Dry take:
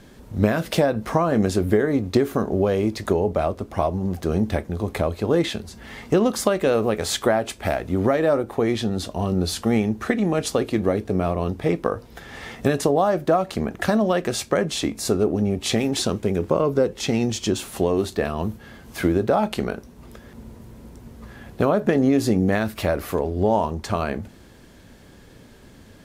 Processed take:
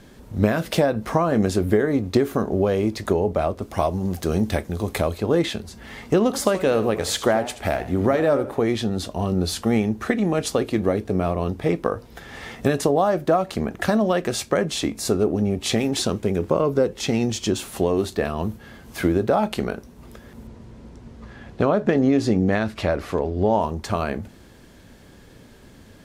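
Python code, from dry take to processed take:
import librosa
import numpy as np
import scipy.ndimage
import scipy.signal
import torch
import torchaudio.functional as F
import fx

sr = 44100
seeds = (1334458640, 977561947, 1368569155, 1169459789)

y = fx.high_shelf(x, sr, hz=3000.0, db=8.0, at=(3.62, 5.18))
y = fx.echo_warbled(y, sr, ms=81, feedback_pct=32, rate_hz=2.8, cents=136, wet_db=-13, at=(6.21, 8.64))
y = fx.lowpass(y, sr, hz=6300.0, slope=12, at=(20.47, 23.61))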